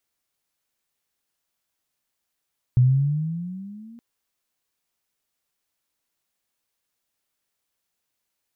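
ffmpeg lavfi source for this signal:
-f lavfi -i "aevalsrc='pow(10,(-11.5-30*t/1.22)/20)*sin(2*PI*122*1.22/(11.5*log(2)/12)*(exp(11.5*log(2)/12*t/1.22)-1))':d=1.22:s=44100"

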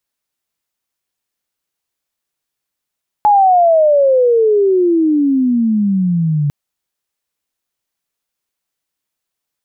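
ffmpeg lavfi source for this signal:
-f lavfi -i "aevalsrc='pow(10,(-6-6*t/3.25)/20)*sin(2*PI*851*3.25/(-31*log(2)/12)*(exp(-31*log(2)/12*t/3.25)-1))':d=3.25:s=44100"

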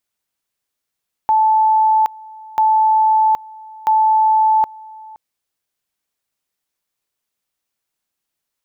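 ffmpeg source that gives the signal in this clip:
-f lavfi -i "aevalsrc='pow(10,(-10-23.5*gte(mod(t,1.29),0.77))/20)*sin(2*PI*873*t)':d=3.87:s=44100"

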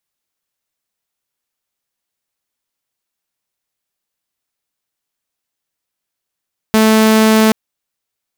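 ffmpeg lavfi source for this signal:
-f lavfi -i "aevalsrc='0.562*(2*mod(219*t,1)-1)':d=0.78:s=44100"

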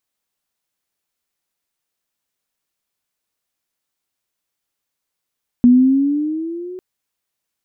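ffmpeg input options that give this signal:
-f lavfi -i "aevalsrc='pow(10,(-5-23*t/1.15)/20)*sin(2*PI*241*1.15/(7.5*log(2)/12)*(exp(7.5*log(2)/12*t/1.15)-1))':d=1.15:s=44100"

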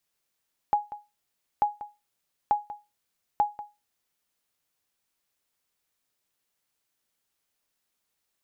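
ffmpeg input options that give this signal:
-f lavfi -i "aevalsrc='0.188*(sin(2*PI*831*mod(t,0.89))*exp(-6.91*mod(t,0.89)/0.24)+0.168*sin(2*PI*831*max(mod(t,0.89)-0.19,0))*exp(-6.91*max(mod(t,0.89)-0.19,0)/0.24))':d=3.56:s=44100"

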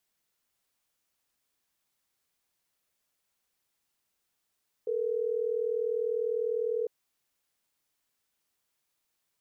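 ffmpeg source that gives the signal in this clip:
-f lavfi -i "aevalsrc='0.0316*(sin(2*PI*440*t)+sin(2*PI*480*t))*clip(min(mod(t,6),2-mod(t,6))/0.005,0,1)':d=3.12:s=44100"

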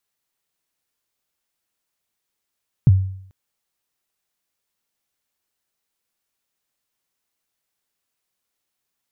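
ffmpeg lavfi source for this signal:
-f lavfi -i "aevalsrc='0.531*pow(10,-3*t/0.64)*sin(2*PI*(160*0.03/log(95/160)*(exp(log(95/160)*min(t,0.03)/0.03)-1)+95*max(t-0.03,0)))':d=0.44:s=44100"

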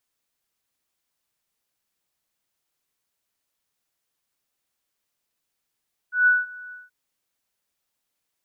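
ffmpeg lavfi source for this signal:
-f lavfi -i "aevalsrc='0.237*sin(2*PI*1480*t)':d=0.779:s=44100,afade=t=in:d=0.147,afade=t=out:st=0.147:d=0.189:silence=0.0668,afade=t=out:st=0.6:d=0.179"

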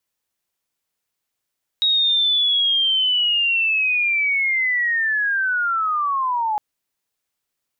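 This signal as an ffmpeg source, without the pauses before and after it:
-f lavfi -i "aevalsrc='pow(10,(-14.5-4*t/4.76)/20)*sin(2*PI*(3800*t-2970*t*t/(2*4.76)))':d=4.76:s=44100"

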